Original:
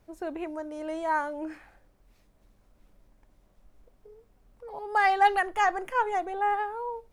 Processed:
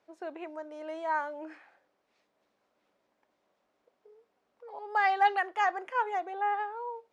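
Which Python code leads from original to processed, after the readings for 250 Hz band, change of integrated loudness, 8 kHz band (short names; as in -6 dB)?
-8.5 dB, -3.0 dB, n/a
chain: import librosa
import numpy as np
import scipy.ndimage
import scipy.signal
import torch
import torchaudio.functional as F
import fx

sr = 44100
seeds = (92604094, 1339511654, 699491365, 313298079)

y = fx.bandpass_edges(x, sr, low_hz=410.0, high_hz=5100.0)
y = F.gain(torch.from_numpy(y), -3.0).numpy()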